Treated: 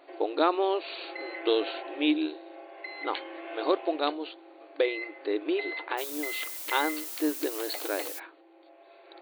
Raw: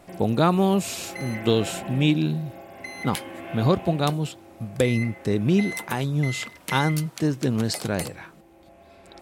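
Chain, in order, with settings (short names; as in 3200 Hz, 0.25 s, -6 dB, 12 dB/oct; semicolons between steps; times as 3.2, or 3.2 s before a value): FFT band-pass 280–4600 Hz; 5.97–8.18 added noise blue -36 dBFS; gain -3 dB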